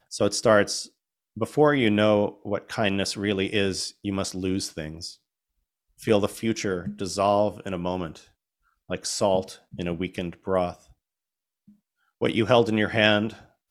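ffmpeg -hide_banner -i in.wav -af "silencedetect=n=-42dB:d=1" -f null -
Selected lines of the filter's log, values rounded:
silence_start: 10.75
silence_end: 12.21 | silence_duration: 1.47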